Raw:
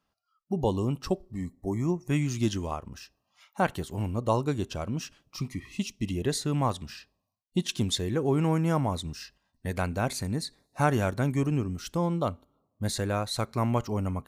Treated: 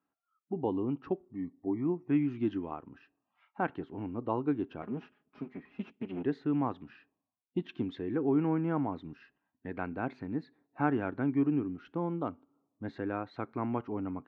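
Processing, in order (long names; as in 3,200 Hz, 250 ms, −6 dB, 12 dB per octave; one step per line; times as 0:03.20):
0:04.82–0:06.24: lower of the sound and its delayed copy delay 4.8 ms
loudspeaker in its box 190–2,200 Hz, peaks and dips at 200 Hz −4 dB, 290 Hz +8 dB, 580 Hz −8 dB, 1,100 Hz −4 dB, 2,000 Hz −5 dB
level −3.5 dB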